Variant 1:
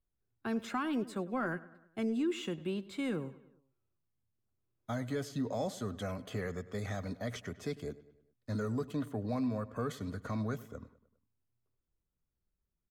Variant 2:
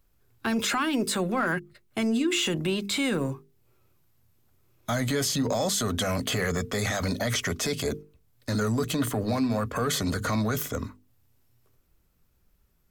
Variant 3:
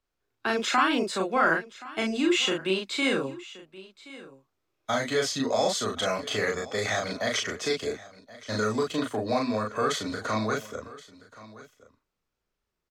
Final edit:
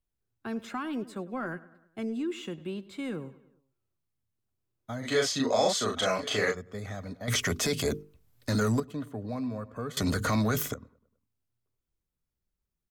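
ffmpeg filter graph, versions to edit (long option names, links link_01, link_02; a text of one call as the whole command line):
ffmpeg -i take0.wav -i take1.wav -i take2.wav -filter_complex "[1:a]asplit=2[link_01][link_02];[0:a]asplit=4[link_03][link_04][link_05][link_06];[link_03]atrim=end=5.08[link_07];[2:a]atrim=start=5.02:end=6.57[link_08];[link_04]atrim=start=6.51:end=7.282[link_09];[link_01]atrim=start=7.278:end=8.802[link_10];[link_05]atrim=start=8.798:end=9.972[link_11];[link_02]atrim=start=9.968:end=10.742[link_12];[link_06]atrim=start=10.738[link_13];[link_07][link_08]acrossfade=duration=0.06:curve1=tri:curve2=tri[link_14];[link_14][link_09]acrossfade=duration=0.06:curve1=tri:curve2=tri[link_15];[link_15][link_10]acrossfade=duration=0.004:curve1=hsin:curve2=hsin[link_16];[link_16][link_11]acrossfade=duration=0.004:curve1=hsin:curve2=hsin[link_17];[link_17][link_12]acrossfade=duration=0.004:curve1=hsin:curve2=hsin[link_18];[link_18][link_13]acrossfade=duration=0.004:curve1=hsin:curve2=hsin" out.wav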